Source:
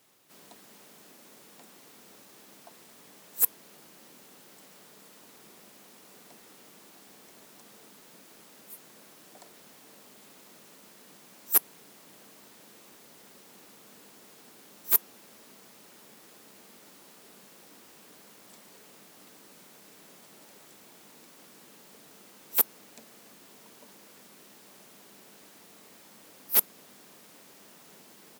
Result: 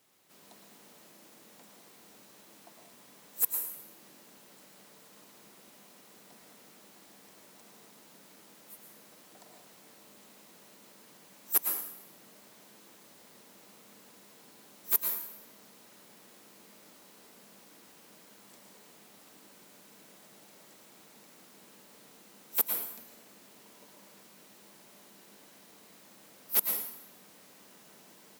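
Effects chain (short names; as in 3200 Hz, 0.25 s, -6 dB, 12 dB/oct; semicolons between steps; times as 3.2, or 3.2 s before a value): plate-style reverb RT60 0.78 s, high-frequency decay 0.95×, pre-delay 95 ms, DRR 2.5 dB; gain -4.5 dB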